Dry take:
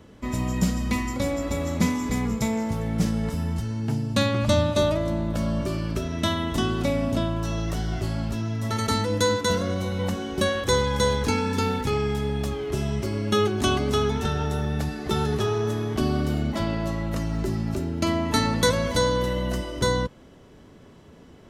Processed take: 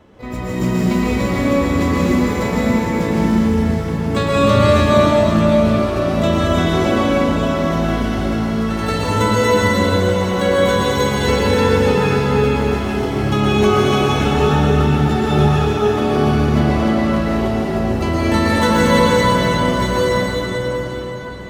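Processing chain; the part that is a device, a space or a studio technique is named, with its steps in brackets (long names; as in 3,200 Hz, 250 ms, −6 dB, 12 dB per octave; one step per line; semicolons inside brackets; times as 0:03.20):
shimmer-style reverb (pitch-shifted copies added +12 semitones −8 dB; convolution reverb RT60 5.3 s, pre-delay 110 ms, DRR −8 dB)
bass and treble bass −3 dB, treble −9 dB
level +1.5 dB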